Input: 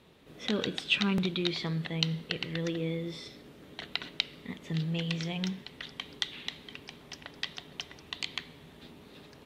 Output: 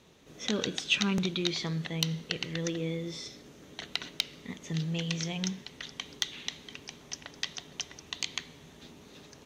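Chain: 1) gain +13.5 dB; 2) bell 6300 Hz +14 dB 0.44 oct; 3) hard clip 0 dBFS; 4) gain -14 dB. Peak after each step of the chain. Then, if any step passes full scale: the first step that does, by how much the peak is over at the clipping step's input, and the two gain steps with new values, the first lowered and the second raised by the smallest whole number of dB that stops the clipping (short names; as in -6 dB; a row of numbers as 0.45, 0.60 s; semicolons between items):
+5.0, +7.5, 0.0, -14.0 dBFS; step 1, 7.5 dB; step 1 +5.5 dB, step 4 -6 dB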